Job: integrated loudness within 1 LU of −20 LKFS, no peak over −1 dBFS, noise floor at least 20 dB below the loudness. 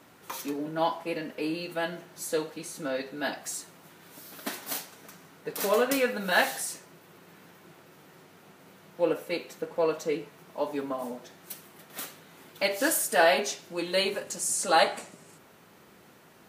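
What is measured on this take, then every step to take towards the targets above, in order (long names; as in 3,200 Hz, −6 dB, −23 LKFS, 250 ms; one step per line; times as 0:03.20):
integrated loudness −29.0 LKFS; sample peak −7.5 dBFS; target loudness −20.0 LKFS
→ level +9 dB
brickwall limiter −1 dBFS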